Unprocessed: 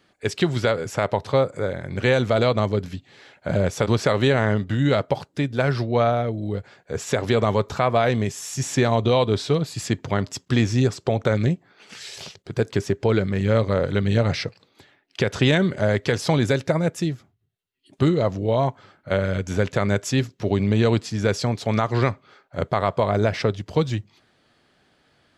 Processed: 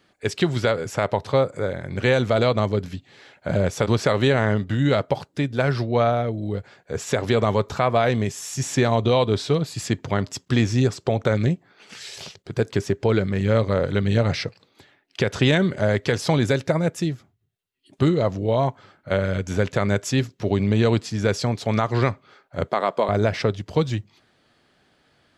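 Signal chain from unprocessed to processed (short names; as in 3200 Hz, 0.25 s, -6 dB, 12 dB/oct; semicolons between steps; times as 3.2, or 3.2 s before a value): 22.69–23.09 HPF 210 Hz 24 dB/oct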